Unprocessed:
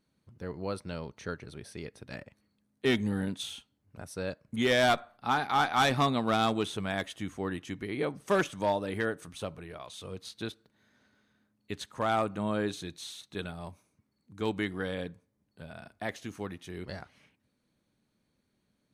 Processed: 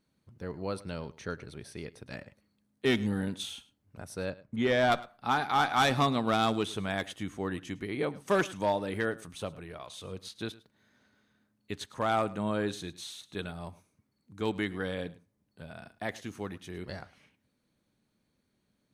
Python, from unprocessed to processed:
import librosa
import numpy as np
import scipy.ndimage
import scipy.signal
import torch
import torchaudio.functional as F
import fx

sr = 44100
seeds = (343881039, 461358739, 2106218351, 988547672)

y = fx.lowpass(x, sr, hz=1900.0, slope=6, at=(4.3, 4.92))
y = y + 10.0 ** (-19.5 / 20.0) * np.pad(y, (int(106 * sr / 1000.0), 0))[:len(y)]